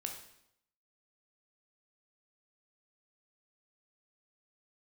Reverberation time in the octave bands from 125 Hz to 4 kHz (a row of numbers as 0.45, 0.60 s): 0.85, 0.80, 0.75, 0.75, 0.70, 0.70 s